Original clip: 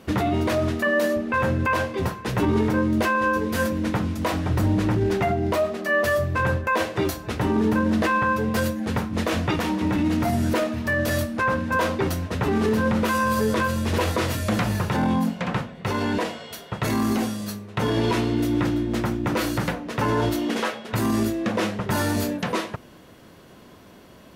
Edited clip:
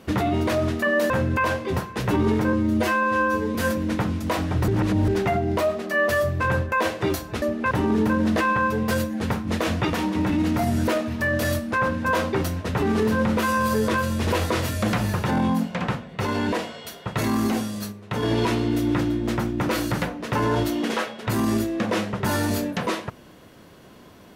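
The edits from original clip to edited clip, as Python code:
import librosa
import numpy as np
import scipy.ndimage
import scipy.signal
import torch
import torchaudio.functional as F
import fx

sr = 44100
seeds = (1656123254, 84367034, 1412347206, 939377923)

y = fx.edit(x, sr, fx.move(start_s=1.1, length_s=0.29, to_s=7.37),
    fx.stretch_span(start_s=2.82, length_s=0.68, factor=1.5),
    fx.reverse_span(start_s=4.63, length_s=0.4),
    fx.clip_gain(start_s=17.58, length_s=0.31, db=-3.0), tone=tone)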